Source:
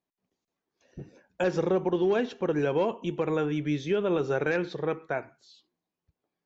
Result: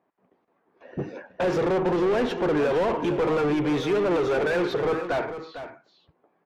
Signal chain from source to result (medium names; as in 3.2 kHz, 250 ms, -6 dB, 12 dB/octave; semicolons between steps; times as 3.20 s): overdrive pedal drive 31 dB, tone 1 kHz, clips at -16 dBFS; level-controlled noise filter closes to 1.7 kHz, open at -23.5 dBFS; delay 452 ms -11 dB